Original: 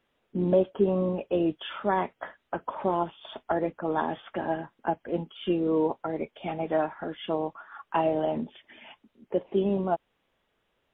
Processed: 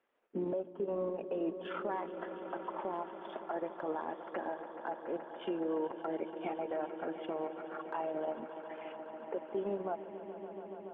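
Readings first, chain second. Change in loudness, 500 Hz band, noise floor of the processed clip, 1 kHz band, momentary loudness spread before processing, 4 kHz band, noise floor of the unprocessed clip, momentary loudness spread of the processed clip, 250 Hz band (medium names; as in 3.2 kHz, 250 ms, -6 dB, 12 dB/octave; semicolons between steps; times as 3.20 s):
-10.0 dB, -9.0 dB, -50 dBFS, -9.0 dB, 11 LU, no reading, -75 dBFS, 9 LU, -10.5 dB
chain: three-band isolator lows -21 dB, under 270 Hz, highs -23 dB, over 2.6 kHz; compression 1.5:1, threshold -31 dBFS, peak gain reduction 5 dB; transient shaper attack +4 dB, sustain -11 dB; peak limiter -25 dBFS, peak gain reduction 12.5 dB; on a send: echo with a slow build-up 142 ms, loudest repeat 5, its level -15 dB; on the sum: trim -3 dB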